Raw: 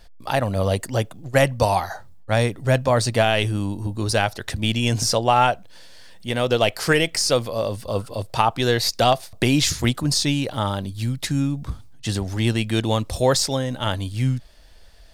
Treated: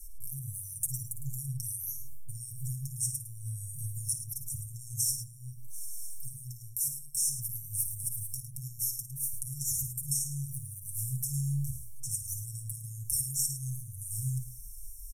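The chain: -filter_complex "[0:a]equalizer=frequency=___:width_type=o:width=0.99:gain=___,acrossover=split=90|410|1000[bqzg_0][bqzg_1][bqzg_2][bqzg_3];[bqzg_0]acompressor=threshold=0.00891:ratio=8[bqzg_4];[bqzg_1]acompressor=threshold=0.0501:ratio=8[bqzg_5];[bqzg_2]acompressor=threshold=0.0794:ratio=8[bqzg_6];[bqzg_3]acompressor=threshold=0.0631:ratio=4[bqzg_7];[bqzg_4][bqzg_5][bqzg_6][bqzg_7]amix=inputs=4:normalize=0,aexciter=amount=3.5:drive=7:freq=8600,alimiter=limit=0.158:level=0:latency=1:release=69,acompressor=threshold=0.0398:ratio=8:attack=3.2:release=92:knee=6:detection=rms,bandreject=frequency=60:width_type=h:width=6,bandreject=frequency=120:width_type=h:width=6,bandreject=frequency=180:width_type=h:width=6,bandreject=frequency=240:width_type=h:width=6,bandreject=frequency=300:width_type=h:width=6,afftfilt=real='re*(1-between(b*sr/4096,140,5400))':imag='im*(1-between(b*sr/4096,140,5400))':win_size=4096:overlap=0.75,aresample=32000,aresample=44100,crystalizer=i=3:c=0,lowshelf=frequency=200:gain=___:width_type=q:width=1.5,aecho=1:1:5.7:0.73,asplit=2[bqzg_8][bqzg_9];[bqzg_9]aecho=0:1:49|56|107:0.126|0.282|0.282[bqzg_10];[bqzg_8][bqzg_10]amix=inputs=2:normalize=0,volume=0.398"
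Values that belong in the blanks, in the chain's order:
2900, 14.5, 7.5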